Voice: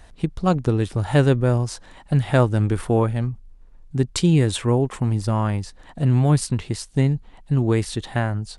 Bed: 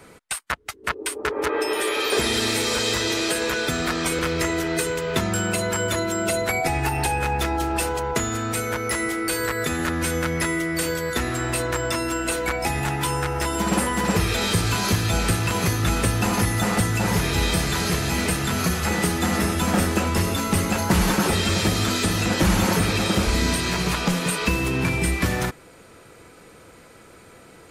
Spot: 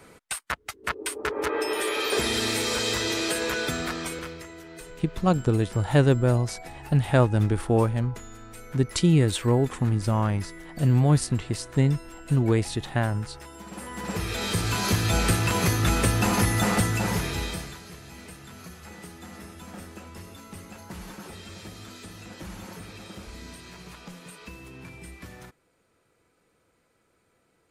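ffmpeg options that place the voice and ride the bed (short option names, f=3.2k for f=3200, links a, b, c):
-filter_complex "[0:a]adelay=4800,volume=-2.5dB[a];[1:a]volume=15dB,afade=t=out:st=3.63:d=0.81:silence=0.158489,afade=t=in:st=13.73:d=1.45:silence=0.11885,afade=t=out:st=16.7:d=1.1:silence=0.1[b];[a][b]amix=inputs=2:normalize=0"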